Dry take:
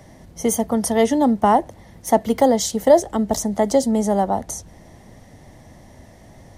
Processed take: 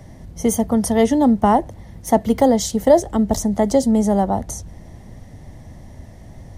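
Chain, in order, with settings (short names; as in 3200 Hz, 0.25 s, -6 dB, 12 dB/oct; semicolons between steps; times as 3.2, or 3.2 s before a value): low shelf 180 Hz +11.5 dB; gain -1 dB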